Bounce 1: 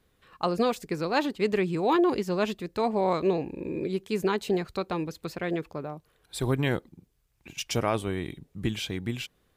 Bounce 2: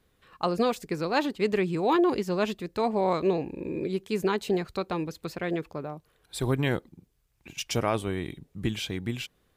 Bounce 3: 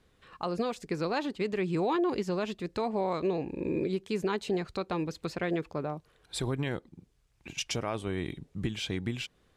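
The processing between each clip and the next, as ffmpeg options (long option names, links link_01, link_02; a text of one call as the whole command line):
ffmpeg -i in.wav -af anull out.wav
ffmpeg -i in.wav -af "lowpass=8700,alimiter=limit=-23dB:level=0:latency=1:release=337,volume=2dB" out.wav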